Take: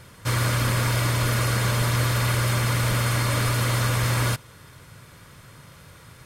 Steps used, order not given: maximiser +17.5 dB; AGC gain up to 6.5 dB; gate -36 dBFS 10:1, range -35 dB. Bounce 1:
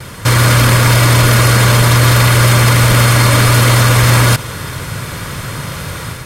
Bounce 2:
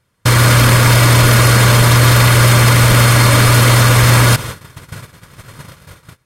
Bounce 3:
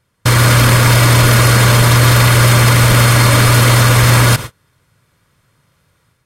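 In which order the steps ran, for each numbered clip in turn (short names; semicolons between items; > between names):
AGC > maximiser > gate; AGC > gate > maximiser; gate > AGC > maximiser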